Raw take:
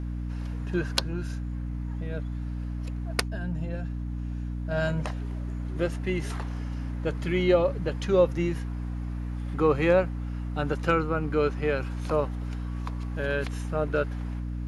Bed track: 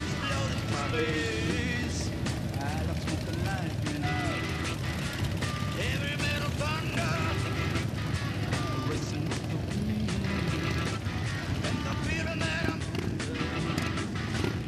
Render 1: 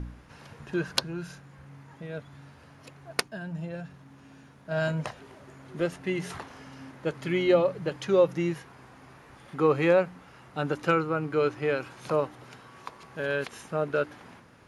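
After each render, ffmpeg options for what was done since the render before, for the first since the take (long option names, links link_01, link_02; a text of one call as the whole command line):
ffmpeg -i in.wav -af "bandreject=frequency=60:width_type=h:width=4,bandreject=frequency=120:width_type=h:width=4,bandreject=frequency=180:width_type=h:width=4,bandreject=frequency=240:width_type=h:width=4,bandreject=frequency=300:width_type=h:width=4" out.wav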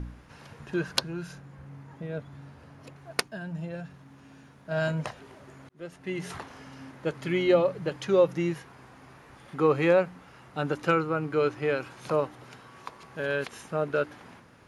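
ffmpeg -i in.wav -filter_complex "[0:a]asettb=1/sr,asplit=3[link_01][link_02][link_03];[link_01]atrim=end=1.334[link_04];[link_02]atrim=start=1.33:end=2.96,asetpts=PTS-STARTPTS,afade=type=in:duration=0.004:curve=qsin,afade=type=out:start_time=1.626:duration=0.004:curve=qsin,tiltshelf=frequency=1100:gain=3.5[link_05];[link_03]atrim=start=2.956[link_06];[link_04][link_05]acrossfade=duration=0.004:curve1=hsin:curve2=qsin[link_07];[link_07][link_06]acrossfade=duration=0.004:curve1=qsin:curve2=hsin,asplit=2[link_08][link_09];[link_08]atrim=end=5.69,asetpts=PTS-STARTPTS,afade=type=out:start_time=5.686:duration=0.004:curve=hsin[link_10];[link_09]atrim=start=5.69,asetpts=PTS-STARTPTS,afade=type=in:duration=0.65[link_11];[link_10][link_11]concat=n=2:v=0:a=1" out.wav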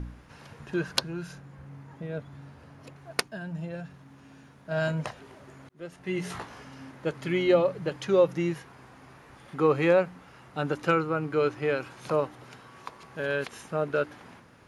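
ffmpeg -i in.wav -filter_complex "[0:a]asettb=1/sr,asplit=3[link_01][link_02][link_03];[link_01]atrim=end=5.964[link_04];[link_02]atrim=start=5.96:end=6.65,asetpts=PTS-STARTPTS,afade=type=in:duration=0.004:curve=qsin,afade=type=out:start_time=0.686:duration=0.004:curve=qsin,asplit=2[link_05][link_06];[link_06]adelay=17,volume=-4dB[link_07];[link_05][link_07]amix=inputs=2:normalize=0,atrim=end_sample=30429[link_08];[link_03]atrim=start=6.646[link_09];[link_04][link_08]acrossfade=duration=0.004:curve1=hsin:curve2=qsin[link_10];[link_10][link_09]acrossfade=duration=0.004:curve1=qsin:curve2=hsin" out.wav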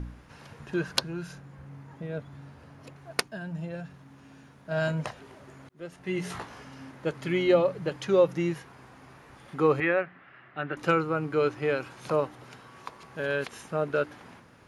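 ffmpeg -i in.wav -filter_complex "[0:a]asettb=1/sr,asplit=3[link_01][link_02][link_03];[link_01]atrim=end=9.804[link_04];[link_02]atrim=start=9.8:end=10.77,asetpts=PTS-STARTPTS,afade=type=in:duration=0.004:curve=qsin,afade=type=out:start_time=0.966:duration=0.004:curve=qsin,highpass=170,equalizer=frequency=190:width_type=q:width=4:gain=-8,equalizer=frequency=270:width_type=q:width=4:gain=-6,equalizer=frequency=480:width_type=q:width=4:gain=-10,equalizer=frequency=900:width_type=q:width=4:gain=-9,equalizer=frequency=1800:width_type=q:width=4:gain=7,lowpass=frequency=2900:width=0.5412,lowpass=frequency=2900:width=1.3066[link_05];[link_03]atrim=start=10.766[link_06];[link_04][link_05]acrossfade=duration=0.004:curve1=hsin:curve2=qsin[link_07];[link_07][link_06]acrossfade=duration=0.004:curve1=qsin:curve2=hsin" out.wav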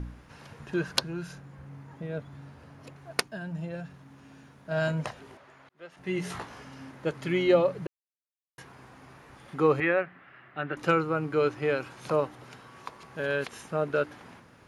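ffmpeg -i in.wav -filter_complex "[0:a]asettb=1/sr,asplit=3[link_01][link_02][link_03];[link_01]atrim=end=5.374[link_04];[link_02]atrim=start=5.37:end=5.97,asetpts=PTS-STARTPTS,afade=type=in:duration=0.004:curve=qsin,afade=type=out:start_time=0.596:duration=0.004:curve=qsin,acrossover=split=550 4700:gain=0.224 1 0.251[link_05][link_06][link_07];[link_05][link_06][link_07]amix=inputs=3:normalize=0[link_08];[link_03]atrim=start=5.966[link_09];[link_04][link_08]acrossfade=duration=0.004:curve1=hsin:curve2=qsin[link_10];[link_10][link_09]acrossfade=duration=0.004:curve1=qsin:curve2=hsin,asplit=3[link_11][link_12][link_13];[link_11]atrim=end=7.87,asetpts=PTS-STARTPTS,afade=type=out:start_time=7.866:duration=0.004:curve=hsin[link_14];[link_12]atrim=start=7.87:end=8.58,asetpts=PTS-STARTPTS,volume=0[link_15];[link_13]atrim=start=8.58,asetpts=PTS-STARTPTS,afade=type=in:duration=0.004:curve=hsin[link_16];[link_14][link_15][link_16]concat=n=3:v=0:a=1" out.wav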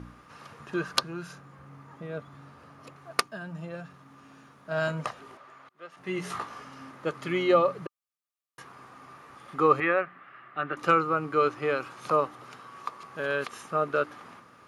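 ffmpeg -i in.wav -af "highpass=frequency=200:poles=1,equalizer=frequency=1200:width=7.8:gain=14" out.wav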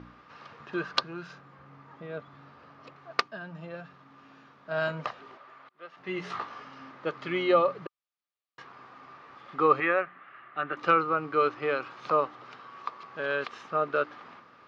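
ffmpeg -i in.wav -af "lowpass=frequency=4800:width=0.5412,lowpass=frequency=4800:width=1.3066,lowshelf=frequency=200:gain=-8" out.wav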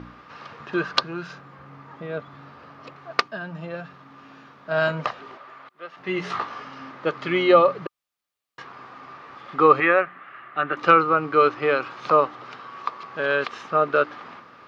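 ffmpeg -i in.wav -af "volume=7.5dB,alimiter=limit=-2dB:level=0:latency=1" out.wav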